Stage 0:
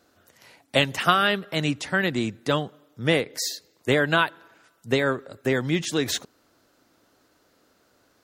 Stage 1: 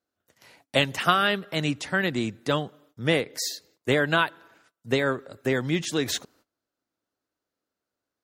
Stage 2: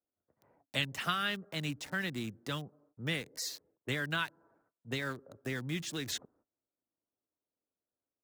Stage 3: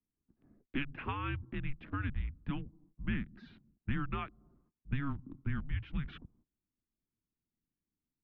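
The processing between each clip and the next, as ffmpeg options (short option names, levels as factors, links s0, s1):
-af "agate=range=0.0794:threshold=0.00158:ratio=16:detection=peak,volume=0.841"
-filter_complex "[0:a]acrossover=split=260|1200[s0][s1][s2];[s1]acompressor=threshold=0.0158:ratio=6[s3];[s2]aeval=exprs='val(0)*gte(abs(val(0)),0.0119)':c=same[s4];[s0][s3][s4]amix=inputs=3:normalize=0,volume=0.376"
-af "highpass=f=210:t=q:w=0.5412,highpass=f=210:t=q:w=1.307,lowpass=f=3000:t=q:w=0.5176,lowpass=f=3000:t=q:w=0.7071,lowpass=f=3000:t=q:w=1.932,afreqshift=-280,lowshelf=f=380:t=q:w=1.5:g=11,volume=0.562"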